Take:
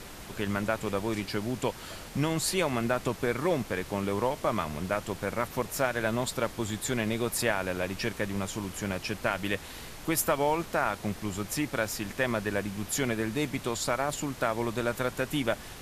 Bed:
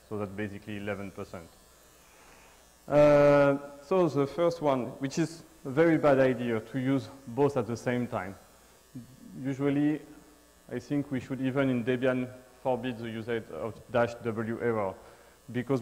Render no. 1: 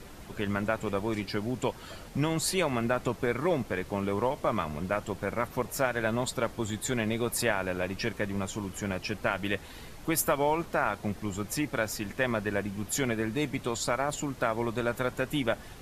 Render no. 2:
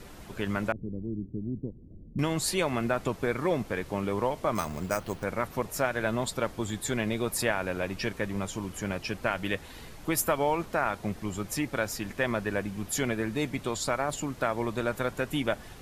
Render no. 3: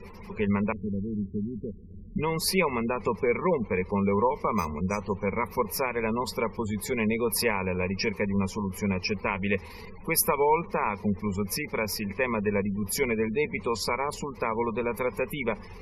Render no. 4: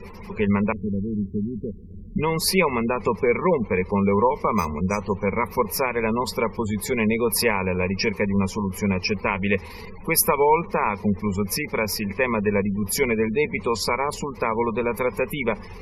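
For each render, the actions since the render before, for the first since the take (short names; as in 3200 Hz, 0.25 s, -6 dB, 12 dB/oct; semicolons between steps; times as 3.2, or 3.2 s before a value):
denoiser 7 dB, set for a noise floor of -44 dBFS
0.72–2.19 inverse Chebyshev low-pass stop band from 1900 Hz, stop band 80 dB; 4.55–5.24 careless resampling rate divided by 6×, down none, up hold
spectral gate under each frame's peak -25 dB strong; ripple EQ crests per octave 0.85, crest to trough 16 dB
gain +5 dB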